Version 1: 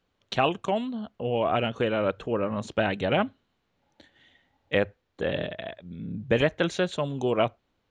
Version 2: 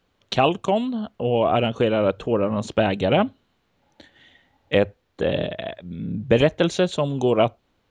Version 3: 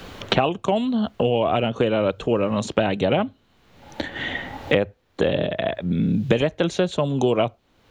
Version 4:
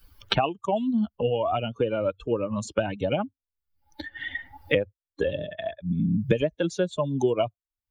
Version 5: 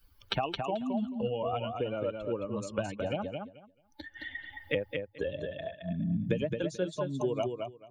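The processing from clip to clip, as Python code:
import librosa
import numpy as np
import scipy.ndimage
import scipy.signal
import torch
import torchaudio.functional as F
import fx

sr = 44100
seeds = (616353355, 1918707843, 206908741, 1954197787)

y1 = fx.dynamic_eq(x, sr, hz=1700.0, q=1.3, threshold_db=-43.0, ratio=4.0, max_db=-7)
y1 = F.gain(torch.from_numpy(y1), 6.5).numpy()
y2 = fx.band_squash(y1, sr, depth_pct=100)
y2 = F.gain(torch.from_numpy(y2), -1.0).numpy()
y3 = fx.bin_expand(y2, sr, power=2.0)
y4 = fx.echo_feedback(y3, sr, ms=218, feedback_pct=17, wet_db=-5)
y4 = F.gain(torch.from_numpy(y4), -8.0).numpy()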